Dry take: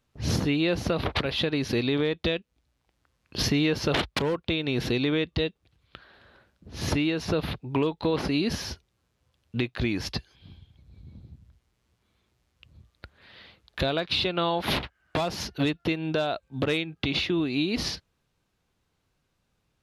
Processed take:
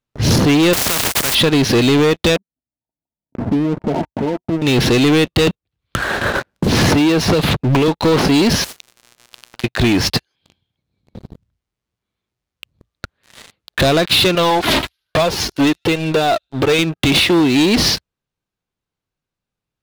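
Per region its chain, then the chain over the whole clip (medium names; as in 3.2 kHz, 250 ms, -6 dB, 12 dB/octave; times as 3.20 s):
0.73–1.35 s: bass shelf 220 Hz +11.5 dB + companded quantiser 4-bit + spectrum-flattening compressor 4:1
2.36–4.62 s: rippled Chebyshev low-pass 950 Hz, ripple 9 dB + flange 1.3 Hz, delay 4.2 ms, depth 6 ms, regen +42%
5.47–7.88 s: gate -57 dBFS, range -20 dB + three bands compressed up and down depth 100%
8.64–9.64 s: compression 12:1, threshold -36 dBFS + spectrum-flattening compressor 10:1
10.17–11.14 s: high-pass 88 Hz 6 dB/octave + bass shelf 180 Hz -9.5 dB
14.35–16.79 s: flange 1.2 Hz, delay 1.6 ms, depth 1.7 ms, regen +20% + feedback echo behind a high-pass 75 ms, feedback 58%, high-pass 4.4 kHz, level -17 dB
whole clip: peaking EQ 68 Hz -11.5 dB 0.27 oct; waveshaping leveller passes 5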